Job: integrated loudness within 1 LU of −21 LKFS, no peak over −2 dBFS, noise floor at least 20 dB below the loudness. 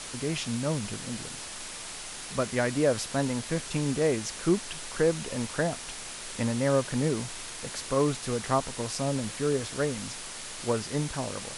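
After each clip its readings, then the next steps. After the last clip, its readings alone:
background noise floor −40 dBFS; target noise floor −50 dBFS; integrated loudness −30.0 LKFS; sample peak −12.5 dBFS; target loudness −21.0 LKFS
→ broadband denoise 10 dB, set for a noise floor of −40 dBFS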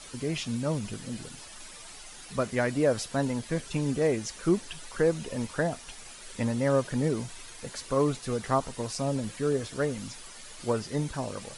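background noise floor −46 dBFS; target noise floor −50 dBFS
→ broadband denoise 6 dB, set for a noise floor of −46 dBFS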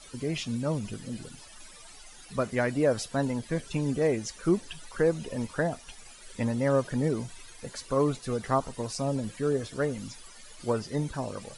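background noise floor −50 dBFS; integrated loudness −30.0 LKFS; sample peak −13.0 dBFS; target loudness −21.0 LKFS
→ level +9 dB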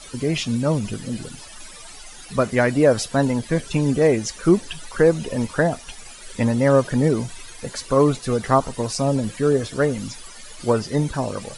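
integrated loudness −21.0 LKFS; sample peak −4.0 dBFS; background noise floor −41 dBFS

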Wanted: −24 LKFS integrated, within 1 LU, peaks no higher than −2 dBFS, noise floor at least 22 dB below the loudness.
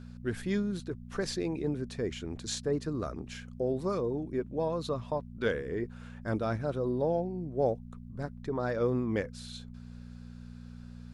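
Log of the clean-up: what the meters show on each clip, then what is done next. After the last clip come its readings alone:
mains hum 60 Hz; hum harmonics up to 240 Hz; level of the hum −44 dBFS; integrated loudness −33.5 LKFS; sample peak −16.5 dBFS; target loudness −24.0 LKFS
→ hum removal 60 Hz, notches 4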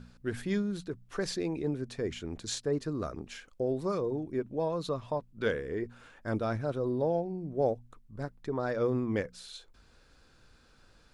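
mains hum none found; integrated loudness −34.0 LKFS; sample peak −17.0 dBFS; target loudness −24.0 LKFS
→ level +10 dB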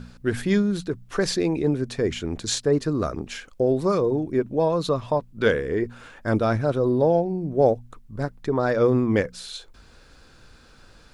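integrated loudness −24.0 LKFS; sample peak −7.0 dBFS; background noise floor −52 dBFS

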